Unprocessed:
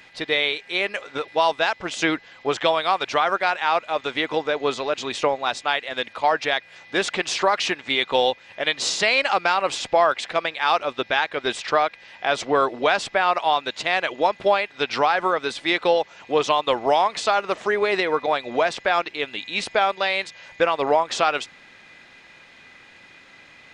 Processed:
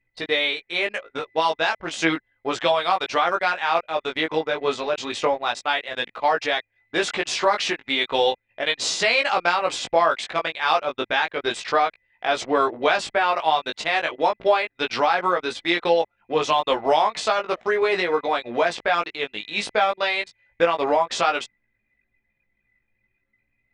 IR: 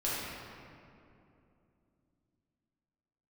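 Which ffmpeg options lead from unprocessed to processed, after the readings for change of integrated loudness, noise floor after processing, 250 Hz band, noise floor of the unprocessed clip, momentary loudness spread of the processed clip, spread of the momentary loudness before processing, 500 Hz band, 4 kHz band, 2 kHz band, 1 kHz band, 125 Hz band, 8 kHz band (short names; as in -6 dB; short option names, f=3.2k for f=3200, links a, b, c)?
-0.5 dB, -74 dBFS, 0.0 dB, -50 dBFS, 6 LU, 6 LU, -0.5 dB, -0.5 dB, -0.5 dB, -0.5 dB, -1.0 dB, -0.5 dB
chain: -af "anlmdn=6.31,flanger=delay=17:depth=2:speed=0.33,volume=2.5dB"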